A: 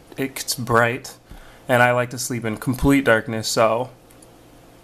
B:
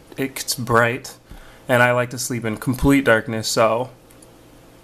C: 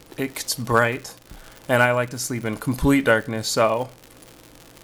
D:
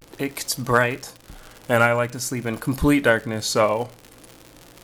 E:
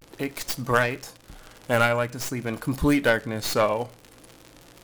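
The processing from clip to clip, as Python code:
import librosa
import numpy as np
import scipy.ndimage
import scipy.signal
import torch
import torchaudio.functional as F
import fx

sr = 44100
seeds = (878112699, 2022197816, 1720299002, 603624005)

y1 = fx.notch(x, sr, hz=720.0, q=13.0)
y1 = y1 * 10.0 ** (1.0 / 20.0)
y2 = fx.dmg_crackle(y1, sr, seeds[0], per_s=120.0, level_db=-27.0)
y2 = y2 * 10.0 ** (-2.5 / 20.0)
y3 = fx.vibrato(y2, sr, rate_hz=0.46, depth_cents=81.0)
y4 = fx.tracing_dist(y3, sr, depth_ms=0.12)
y4 = y4 * 10.0 ** (-3.0 / 20.0)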